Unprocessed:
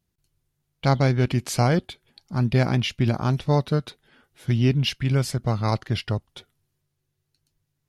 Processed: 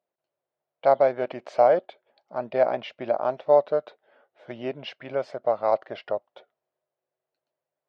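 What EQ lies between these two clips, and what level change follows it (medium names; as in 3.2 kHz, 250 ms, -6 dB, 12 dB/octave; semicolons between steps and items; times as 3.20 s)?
resonant high-pass 600 Hz, resonance Q 4.9; tape spacing loss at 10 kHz 40 dB; 0.0 dB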